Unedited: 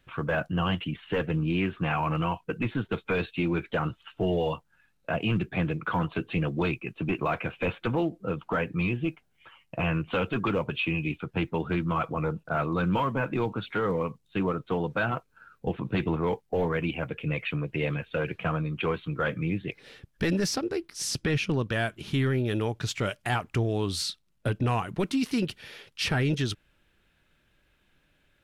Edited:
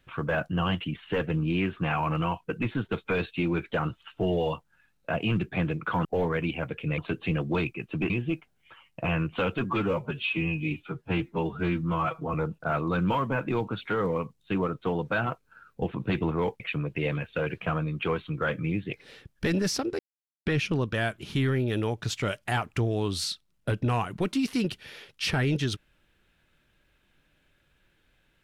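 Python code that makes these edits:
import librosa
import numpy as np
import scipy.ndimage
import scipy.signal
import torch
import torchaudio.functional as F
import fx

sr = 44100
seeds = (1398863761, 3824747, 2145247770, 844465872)

y = fx.edit(x, sr, fx.cut(start_s=7.17, length_s=1.68),
    fx.stretch_span(start_s=10.39, length_s=1.8, factor=1.5),
    fx.move(start_s=16.45, length_s=0.93, to_s=6.05),
    fx.silence(start_s=20.77, length_s=0.47), tone=tone)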